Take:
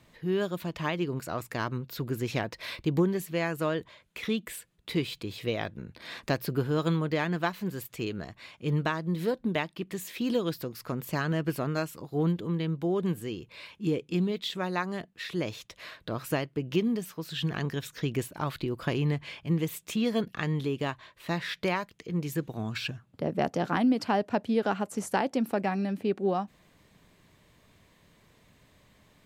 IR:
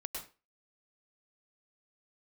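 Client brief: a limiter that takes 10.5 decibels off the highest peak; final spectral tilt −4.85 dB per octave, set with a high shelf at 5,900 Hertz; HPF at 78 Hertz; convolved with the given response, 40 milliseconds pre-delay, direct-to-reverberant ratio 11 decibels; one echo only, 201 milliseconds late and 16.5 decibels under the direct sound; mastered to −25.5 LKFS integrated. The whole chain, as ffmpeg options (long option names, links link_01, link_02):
-filter_complex "[0:a]highpass=78,highshelf=frequency=5900:gain=9,alimiter=limit=-21.5dB:level=0:latency=1,aecho=1:1:201:0.15,asplit=2[link_01][link_02];[1:a]atrim=start_sample=2205,adelay=40[link_03];[link_02][link_03]afir=irnorm=-1:irlink=0,volume=-10.5dB[link_04];[link_01][link_04]amix=inputs=2:normalize=0,volume=7.5dB"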